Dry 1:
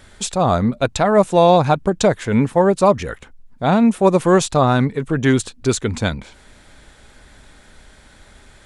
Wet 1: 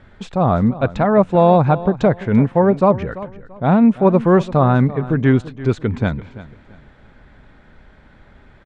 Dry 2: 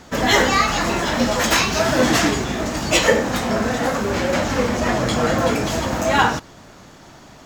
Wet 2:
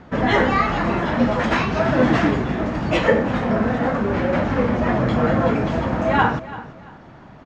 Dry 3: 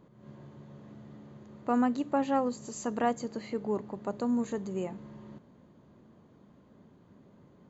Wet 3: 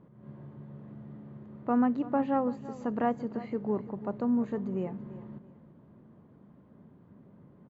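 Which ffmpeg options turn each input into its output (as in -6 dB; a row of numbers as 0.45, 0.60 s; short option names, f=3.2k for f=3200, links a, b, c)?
-af "lowpass=2.1k,equalizer=f=150:t=o:w=1.5:g=5,aecho=1:1:338|676|1014:0.15|0.0419|0.0117,volume=-1dB"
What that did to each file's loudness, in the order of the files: +1.0, -1.0, +0.5 LU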